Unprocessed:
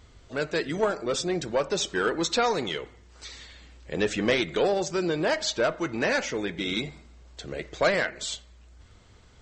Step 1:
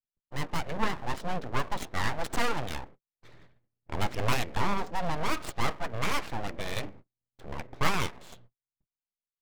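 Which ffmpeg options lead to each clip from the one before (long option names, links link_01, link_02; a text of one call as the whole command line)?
ffmpeg -i in.wav -af "agate=range=-55dB:threshold=-45dB:ratio=16:detection=peak,adynamicsmooth=sensitivity=2.5:basefreq=920,aeval=exprs='abs(val(0))':channel_layout=same" out.wav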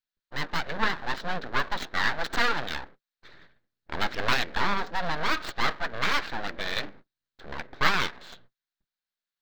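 ffmpeg -i in.wav -af "equalizer=frequency=100:width_type=o:width=0.67:gain=-12,equalizer=frequency=1600:width_type=o:width=0.67:gain=10,equalizer=frequency=4000:width_type=o:width=0.67:gain=10,equalizer=frequency=10000:width_type=o:width=0.67:gain=-11" out.wav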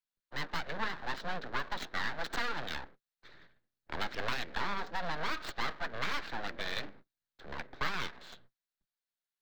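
ffmpeg -i in.wav -filter_complex "[0:a]acrossover=split=160|350[link_01][link_02][link_03];[link_01]acompressor=threshold=-29dB:ratio=4[link_04];[link_02]acompressor=threshold=-45dB:ratio=4[link_05];[link_03]acompressor=threshold=-28dB:ratio=4[link_06];[link_04][link_05][link_06]amix=inputs=3:normalize=0,volume=-5dB" out.wav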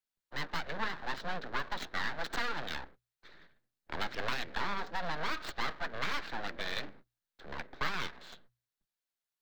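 ffmpeg -i in.wav -af "bandreject=frequency=60:width_type=h:width=6,bandreject=frequency=120:width_type=h:width=6" out.wav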